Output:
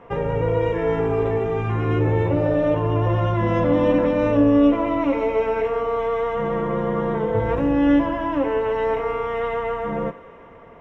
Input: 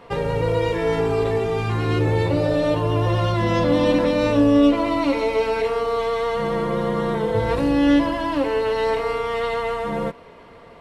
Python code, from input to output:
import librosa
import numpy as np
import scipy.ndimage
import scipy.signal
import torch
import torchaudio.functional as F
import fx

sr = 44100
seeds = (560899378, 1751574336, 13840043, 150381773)

y = np.convolve(x, np.full(10, 1.0 / 10))[:len(x)]
y = fx.echo_thinned(y, sr, ms=94, feedback_pct=82, hz=340.0, wet_db=-18)